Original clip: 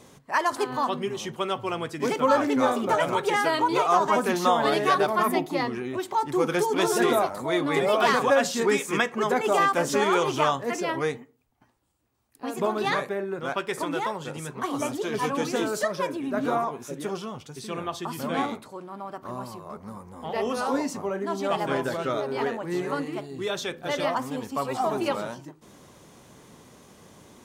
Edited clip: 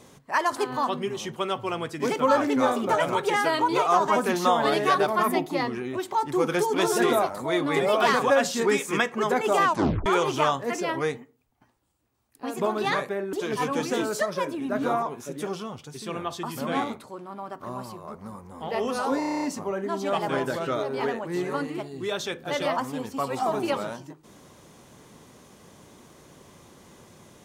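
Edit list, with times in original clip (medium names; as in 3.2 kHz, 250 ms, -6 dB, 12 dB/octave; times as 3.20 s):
9.64 s: tape stop 0.42 s
13.33–14.95 s: delete
20.81 s: stutter 0.03 s, 9 plays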